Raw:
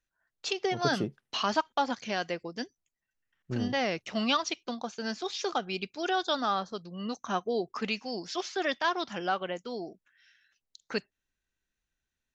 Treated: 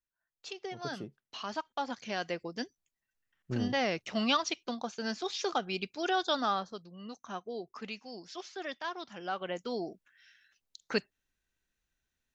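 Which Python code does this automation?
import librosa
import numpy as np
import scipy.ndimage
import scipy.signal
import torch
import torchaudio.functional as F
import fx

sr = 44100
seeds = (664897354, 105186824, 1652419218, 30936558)

y = fx.gain(x, sr, db=fx.line((1.37, -11.0), (2.42, -1.0), (6.47, -1.0), (7.01, -9.5), (9.17, -9.5), (9.65, 1.5)))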